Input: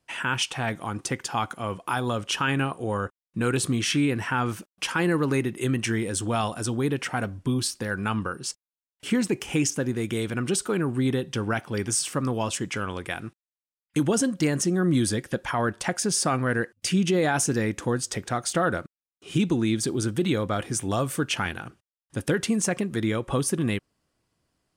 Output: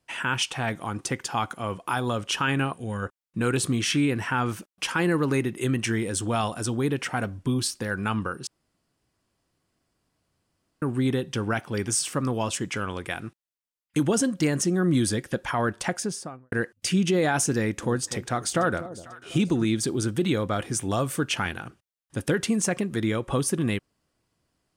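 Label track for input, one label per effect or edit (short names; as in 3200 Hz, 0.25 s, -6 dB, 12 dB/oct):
2.730000	3.020000	spectral gain 270–1400 Hz -8 dB
8.470000	10.820000	room tone
15.820000	16.520000	studio fade out
17.580000	19.650000	echo with dull and thin repeats by turns 0.247 s, split 830 Hz, feedback 61%, level -13.5 dB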